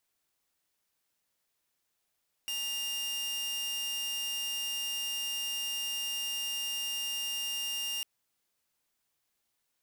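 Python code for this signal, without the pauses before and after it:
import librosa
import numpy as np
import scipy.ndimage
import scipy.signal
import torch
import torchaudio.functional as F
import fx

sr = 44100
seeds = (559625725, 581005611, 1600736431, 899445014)

y = 10.0 ** (-30.0 / 20.0) * (2.0 * np.mod(2810.0 * (np.arange(round(5.55 * sr)) / sr), 1.0) - 1.0)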